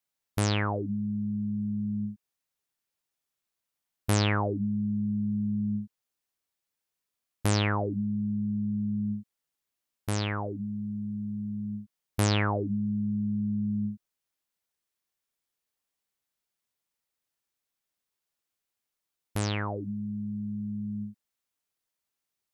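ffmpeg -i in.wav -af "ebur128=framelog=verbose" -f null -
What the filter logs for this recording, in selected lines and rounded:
Integrated loudness:
  I:         -30.7 LUFS
  Threshold: -41.0 LUFS
Loudness range:
  LRA:         6.3 LU
  Threshold: -52.7 LUFS
  LRA low:   -36.9 LUFS
  LRA high:  -30.7 LUFS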